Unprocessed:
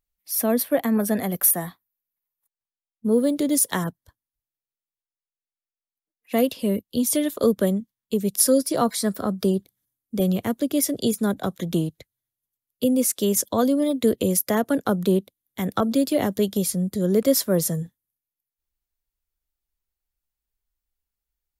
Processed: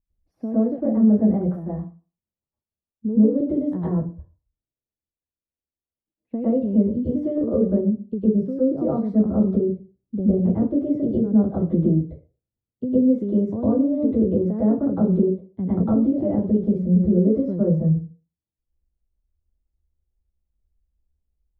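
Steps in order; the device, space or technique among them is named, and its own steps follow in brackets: television next door (compression, threshold -23 dBFS, peak gain reduction 10 dB; low-pass 290 Hz 12 dB/octave; reverberation RT60 0.35 s, pre-delay 100 ms, DRR -10.5 dB); trim +3.5 dB

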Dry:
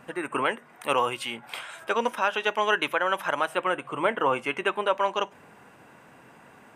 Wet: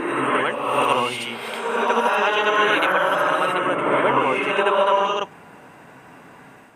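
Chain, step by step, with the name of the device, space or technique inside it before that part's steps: reverse reverb (reverse; reverberation RT60 1.5 s, pre-delay 57 ms, DRR -4 dB; reverse); trim +1.5 dB

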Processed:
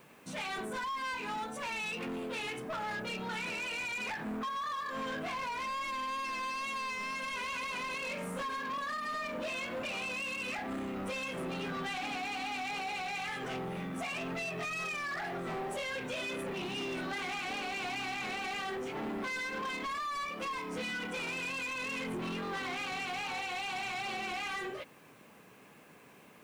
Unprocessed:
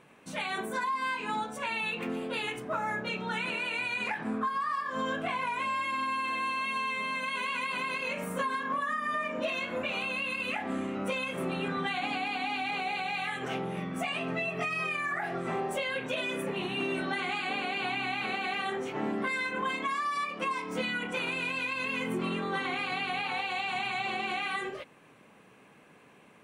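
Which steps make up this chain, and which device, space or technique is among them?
compact cassette (saturation -34 dBFS, distortion -11 dB; low-pass 12 kHz; wow and flutter 28 cents; white noise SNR 31 dB)

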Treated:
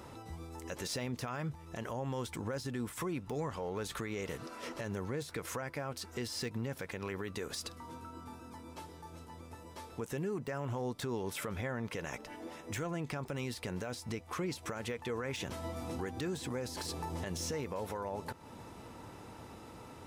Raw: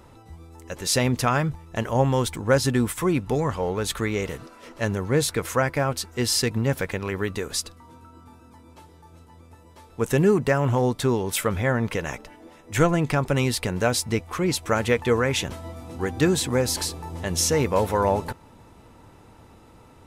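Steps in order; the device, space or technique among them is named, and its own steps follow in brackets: broadcast voice chain (high-pass 110 Hz 6 dB/octave; de-esser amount 60%; compression 3:1, threshold -38 dBFS, peak gain reduction 17.5 dB; peaking EQ 5.3 kHz +2.5 dB 0.44 oct; peak limiter -30.5 dBFS, peak gain reduction 9 dB); trim +1.5 dB

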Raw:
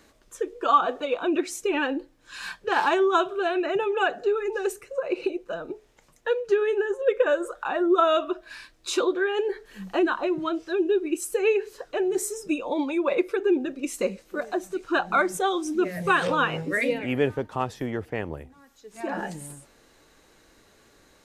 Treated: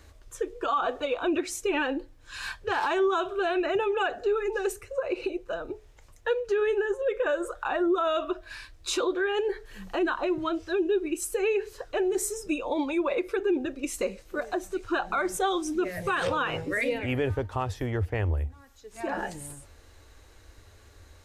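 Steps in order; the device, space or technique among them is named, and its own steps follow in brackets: car stereo with a boomy subwoofer (resonant low shelf 120 Hz +11 dB, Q 3; peak limiter -18.5 dBFS, peak gain reduction 10.5 dB)

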